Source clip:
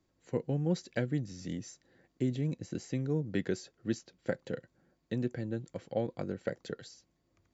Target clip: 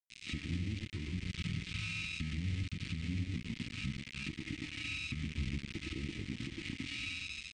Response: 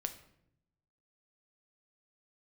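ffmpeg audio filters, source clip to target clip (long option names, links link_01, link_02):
-filter_complex "[0:a]aemphasis=mode=reproduction:type=75kf[link_01];[1:a]atrim=start_sample=2205,asetrate=39249,aresample=44100[link_02];[link_01][link_02]afir=irnorm=-1:irlink=0,aeval=exprs='val(0)+0.00282*sin(2*PI*2100*n/s)':channel_layout=same,acompressor=threshold=-44dB:ratio=12,aecho=1:1:112:0.562,aeval=exprs='val(0)*gte(abs(val(0)),0.00398)':channel_layout=same,aresample=32000,aresample=44100,asetrate=26990,aresample=44100,atempo=1.63392,alimiter=level_in=16dB:limit=-24dB:level=0:latency=1:release=212,volume=-16dB,firequalizer=gain_entry='entry(230,0);entry(650,-22);entry(1400,-16);entry(2100,9);entry(7300,-3)':delay=0.05:min_phase=1,volume=12.5dB"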